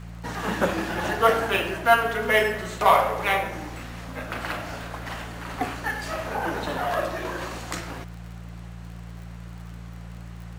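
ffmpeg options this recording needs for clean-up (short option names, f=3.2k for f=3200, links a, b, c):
-af "adeclick=t=4,bandreject=f=57.4:t=h:w=4,bandreject=f=114.8:t=h:w=4,bandreject=f=172.2:t=h:w=4"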